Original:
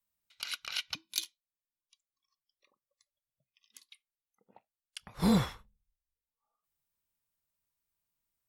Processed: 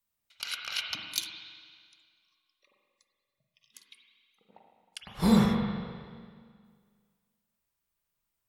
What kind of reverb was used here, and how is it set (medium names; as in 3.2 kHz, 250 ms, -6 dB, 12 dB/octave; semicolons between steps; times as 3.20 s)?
spring tank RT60 1.9 s, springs 39/44/53 ms, chirp 60 ms, DRR 1 dB; trim +2 dB